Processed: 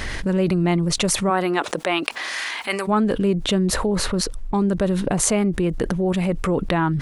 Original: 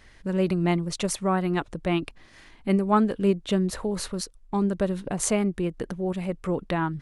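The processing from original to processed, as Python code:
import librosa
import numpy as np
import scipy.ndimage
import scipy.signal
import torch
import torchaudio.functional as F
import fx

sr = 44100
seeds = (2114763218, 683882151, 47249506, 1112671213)

y = fx.highpass(x, sr, hz=fx.line((1.29, 330.0), (2.87, 1300.0)), slope=12, at=(1.29, 2.87), fade=0.02)
y = fx.high_shelf(y, sr, hz=4000.0, db=-8.5, at=(3.86, 4.54))
y = fx.env_flatten(y, sr, amount_pct=70)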